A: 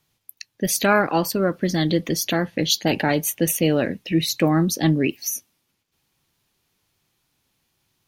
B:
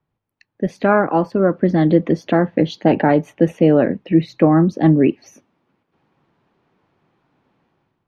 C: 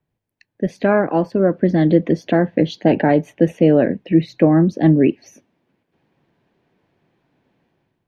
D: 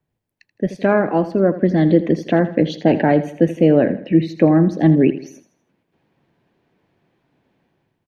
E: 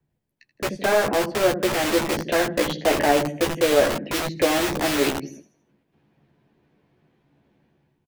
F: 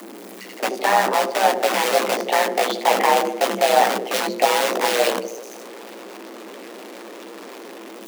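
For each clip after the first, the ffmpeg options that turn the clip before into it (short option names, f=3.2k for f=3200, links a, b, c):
-filter_complex "[0:a]lowpass=1.2k,acrossover=split=140[a][b];[b]dynaudnorm=f=130:g=7:m=15dB[c];[a][c]amix=inputs=2:normalize=0,volume=-1dB"
-af "superequalizer=9b=0.631:10b=0.447"
-af "aecho=1:1:81|162|243|324:0.2|0.0838|0.0352|0.0148"
-filter_complex "[0:a]acrossover=split=350[a][b];[a]aeval=exprs='(mod(15.8*val(0)+1,2)-1)/15.8':c=same[c];[b]flanger=delay=0.7:depth=4.1:regen=-74:speed=0.5:shape=triangular[d];[c][d]amix=inputs=2:normalize=0,asplit=2[e][f];[f]adelay=14,volume=-5dB[g];[e][g]amix=inputs=2:normalize=0,volume=1.5dB"
-af "aeval=exprs='val(0)+0.5*0.0211*sgn(val(0))':c=same,tremolo=f=120:d=0.75,afreqshift=190,volume=5dB"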